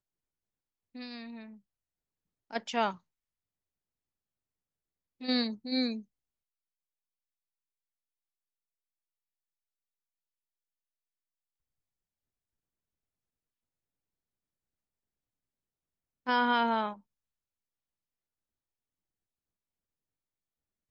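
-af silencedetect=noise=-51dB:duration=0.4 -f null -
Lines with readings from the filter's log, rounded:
silence_start: 0.00
silence_end: 0.95 | silence_duration: 0.95
silence_start: 1.57
silence_end: 2.51 | silence_duration: 0.94
silence_start: 2.97
silence_end: 5.21 | silence_duration: 2.23
silence_start: 6.02
silence_end: 16.26 | silence_duration: 10.24
silence_start: 16.99
silence_end: 20.91 | silence_duration: 3.92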